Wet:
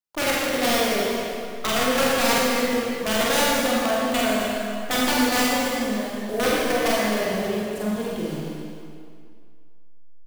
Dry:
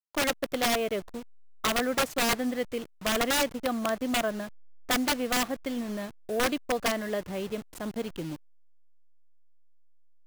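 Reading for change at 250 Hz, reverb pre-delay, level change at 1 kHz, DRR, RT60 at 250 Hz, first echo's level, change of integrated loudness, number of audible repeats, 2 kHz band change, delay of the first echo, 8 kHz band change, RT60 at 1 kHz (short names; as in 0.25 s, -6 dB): +7.0 dB, 32 ms, +7.0 dB, -6.0 dB, 2.1 s, -3.5 dB, +6.5 dB, 2, +7.0 dB, 47 ms, +6.5 dB, 2.3 s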